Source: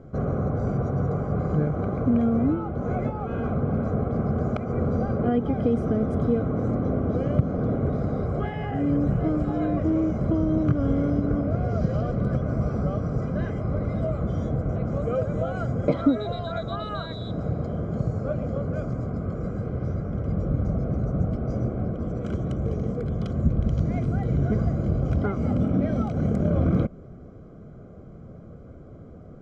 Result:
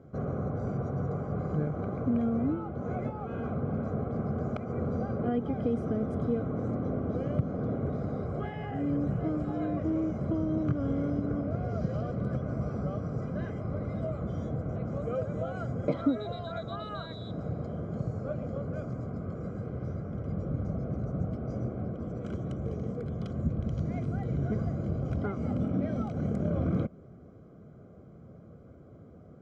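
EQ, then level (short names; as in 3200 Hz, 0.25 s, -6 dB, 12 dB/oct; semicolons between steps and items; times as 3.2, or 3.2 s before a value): HPF 74 Hz; -6.5 dB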